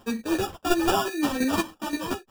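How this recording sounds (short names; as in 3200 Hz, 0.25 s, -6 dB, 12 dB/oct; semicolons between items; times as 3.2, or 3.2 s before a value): aliases and images of a low sample rate 2100 Hz, jitter 0%; chopped level 5.7 Hz, depth 60%, duty 15%; a shimmering, thickened sound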